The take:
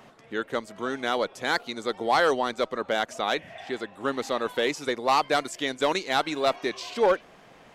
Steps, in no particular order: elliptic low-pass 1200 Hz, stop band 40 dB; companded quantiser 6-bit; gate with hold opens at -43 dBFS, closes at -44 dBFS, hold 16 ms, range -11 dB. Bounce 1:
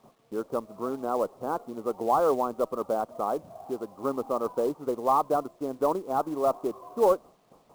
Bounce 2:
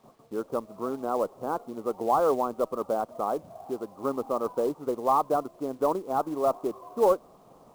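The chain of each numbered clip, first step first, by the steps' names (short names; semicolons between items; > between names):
elliptic low-pass > gate with hold > companded quantiser; gate with hold > elliptic low-pass > companded quantiser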